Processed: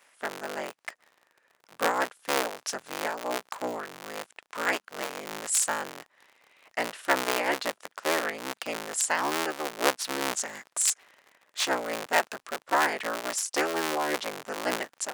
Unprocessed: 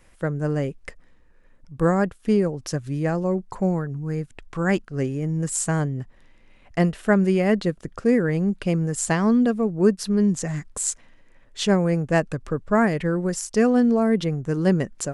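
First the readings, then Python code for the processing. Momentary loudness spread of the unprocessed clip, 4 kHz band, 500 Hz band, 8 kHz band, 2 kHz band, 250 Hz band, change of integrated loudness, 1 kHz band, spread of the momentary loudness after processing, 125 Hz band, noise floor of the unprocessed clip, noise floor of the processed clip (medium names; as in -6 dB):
10 LU, +4.0 dB, -8.5 dB, +1.0 dB, +1.5 dB, -18.0 dB, -6.5 dB, +1.0 dB, 12 LU, -29.5 dB, -54 dBFS, -71 dBFS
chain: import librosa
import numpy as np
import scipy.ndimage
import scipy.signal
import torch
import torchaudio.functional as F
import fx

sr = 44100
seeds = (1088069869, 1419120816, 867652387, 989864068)

y = fx.cycle_switch(x, sr, every=3, mode='inverted')
y = scipy.signal.sosfilt(scipy.signal.butter(2, 780.0, 'highpass', fs=sr, output='sos'), y)
y = fx.am_noise(y, sr, seeds[0], hz=5.7, depth_pct=50)
y = y * librosa.db_to_amplitude(3.0)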